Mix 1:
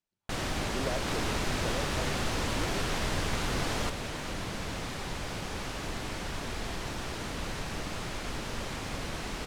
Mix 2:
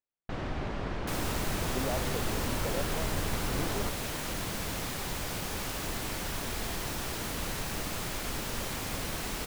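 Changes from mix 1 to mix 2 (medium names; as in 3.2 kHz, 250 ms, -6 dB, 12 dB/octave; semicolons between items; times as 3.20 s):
speech: entry +1.00 s; first sound: add tape spacing loss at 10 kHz 35 dB; master: remove distance through air 60 m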